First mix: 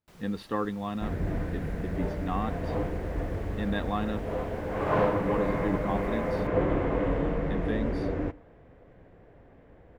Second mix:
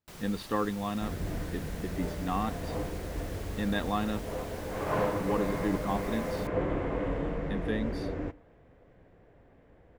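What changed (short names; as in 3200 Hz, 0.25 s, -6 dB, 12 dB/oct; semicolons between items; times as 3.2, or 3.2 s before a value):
first sound +6.5 dB; second sound -4.5 dB; master: add high shelf 4100 Hz +6.5 dB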